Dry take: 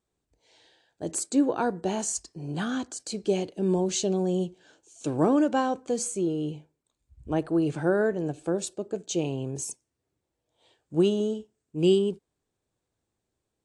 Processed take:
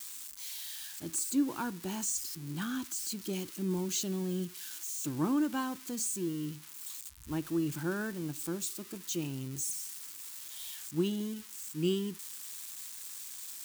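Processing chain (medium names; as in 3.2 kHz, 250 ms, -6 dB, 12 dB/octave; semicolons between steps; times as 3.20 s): zero-crossing glitches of -27.5 dBFS; high-order bell 560 Hz -13 dB 1.1 oct; trim -6 dB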